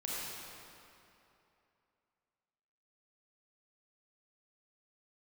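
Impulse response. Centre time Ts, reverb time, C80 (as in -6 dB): 0.186 s, 2.9 s, -3.0 dB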